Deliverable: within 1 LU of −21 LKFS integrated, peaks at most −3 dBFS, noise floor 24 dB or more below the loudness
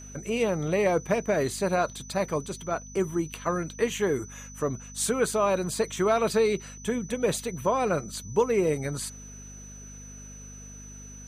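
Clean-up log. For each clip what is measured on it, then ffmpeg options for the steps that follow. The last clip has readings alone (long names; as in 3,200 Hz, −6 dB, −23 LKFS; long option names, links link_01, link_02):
mains hum 50 Hz; hum harmonics up to 250 Hz; level of the hum −43 dBFS; interfering tone 6,000 Hz; level of the tone −45 dBFS; integrated loudness −27.5 LKFS; sample peak −11.5 dBFS; target loudness −21.0 LKFS
→ -af "bandreject=frequency=50:width_type=h:width=4,bandreject=frequency=100:width_type=h:width=4,bandreject=frequency=150:width_type=h:width=4,bandreject=frequency=200:width_type=h:width=4,bandreject=frequency=250:width_type=h:width=4"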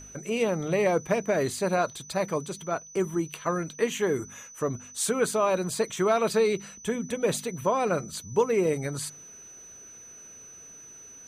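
mains hum none found; interfering tone 6,000 Hz; level of the tone −45 dBFS
→ -af "bandreject=frequency=6000:width=30"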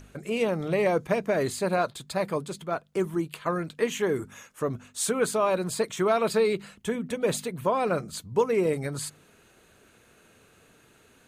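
interfering tone none found; integrated loudness −28.0 LKFS; sample peak −12.0 dBFS; target loudness −21.0 LKFS
→ -af "volume=7dB"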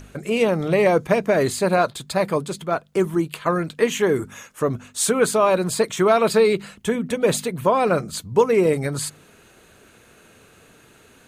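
integrated loudness −21.0 LKFS; sample peak −5.0 dBFS; background noise floor −52 dBFS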